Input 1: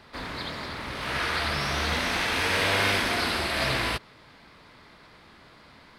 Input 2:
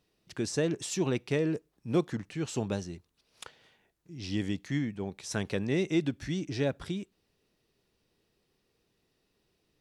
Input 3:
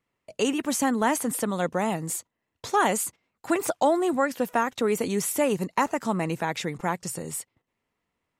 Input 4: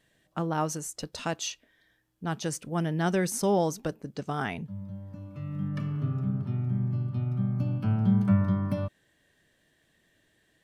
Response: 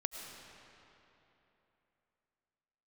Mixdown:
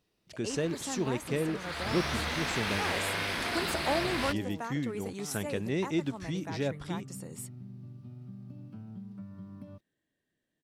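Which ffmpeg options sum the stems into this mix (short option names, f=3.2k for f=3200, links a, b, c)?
-filter_complex "[0:a]aeval=exprs='sgn(val(0))*max(abs(val(0))-0.00355,0)':c=same,acompressor=threshold=-29dB:ratio=6,adelay=350,volume=-0.5dB,afade=t=in:st=1.58:d=0.39:silence=0.251189[a];[1:a]volume=-2.5dB,asplit=2[b][c];[2:a]adelay=50,volume=-9dB[d];[3:a]equalizer=f=260:t=o:w=1.6:g=8.5,acompressor=threshold=-23dB:ratio=6,adelay=900,volume=-18.5dB[e];[c]apad=whole_len=372247[f];[d][f]sidechaincompress=threshold=-34dB:ratio=8:attack=36:release=1350[g];[a][b][g][e]amix=inputs=4:normalize=0"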